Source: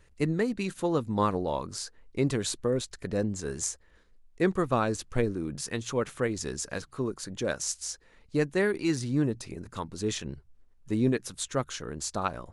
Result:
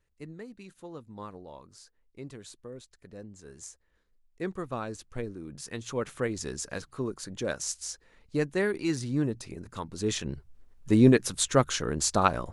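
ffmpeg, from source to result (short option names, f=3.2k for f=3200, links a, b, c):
-af "volume=7dB,afade=t=in:st=3.28:d=1.19:silence=0.421697,afade=t=in:st=5.44:d=0.72:silence=0.446684,afade=t=in:st=9.83:d=1.16:silence=0.375837"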